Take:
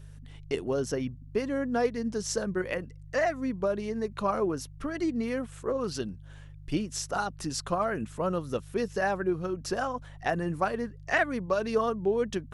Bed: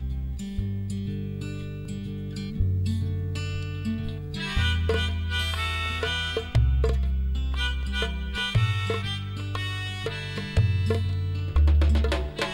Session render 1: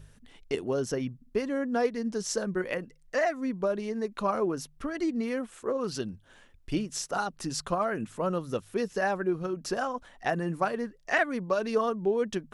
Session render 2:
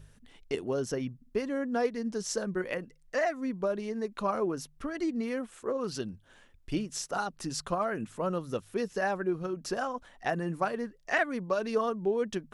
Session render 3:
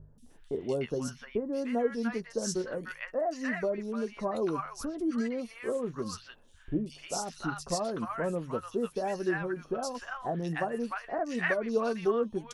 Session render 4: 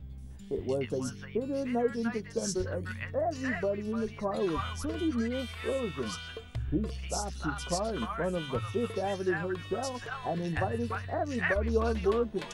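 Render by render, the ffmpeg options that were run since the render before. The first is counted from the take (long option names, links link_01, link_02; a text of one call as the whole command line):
ffmpeg -i in.wav -af "bandreject=frequency=50:width_type=h:width=4,bandreject=frequency=100:width_type=h:width=4,bandreject=frequency=150:width_type=h:width=4" out.wav
ffmpeg -i in.wav -af "volume=-2dB" out.wav
ffmpeg -i in.wav -filter_complex "[0:a]asplit=2[link_01][link_02];[link_02]adelay=13,volume=-11dB[link_03];[link_01][link_03]amix=inputs=2:normalize=0,acrossover=split=1000|3400[link_04][link_05][link_06];[link_06]adelay=180[link_07];[link_05]adelay=300[link_08];[link_04][link_08][link_07]amix=inputs=3:normalize=0" out.wav
ffmpeg -i in.wav -i bed.wav -filter_complex "[1:a]volume=-14.5dB[link_01];[0:a][link_01]amix=inputs=2:normalize=0" out.wav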